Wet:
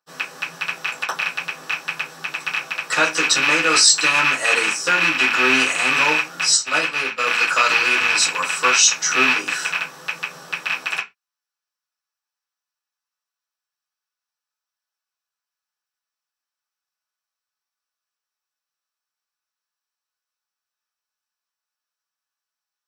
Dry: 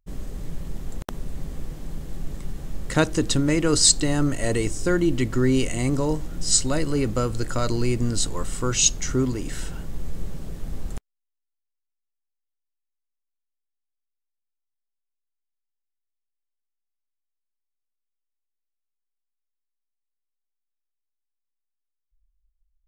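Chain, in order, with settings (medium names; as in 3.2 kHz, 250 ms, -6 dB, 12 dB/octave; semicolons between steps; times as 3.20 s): rattle on loud lows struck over -28 dBFS, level -12 dBFS; 6.56–7.26 s: gate -19 dBFS, range -25 dB; peak limiter -11.5 dBFS, peak gain reduction 9.5 dB; resonant high-pass 1.4 kHz, resonance Q 1.6; reverberation RT60 0.20 s, pre-delay 3 ms, DRR -12 dB; trim -1.5 dB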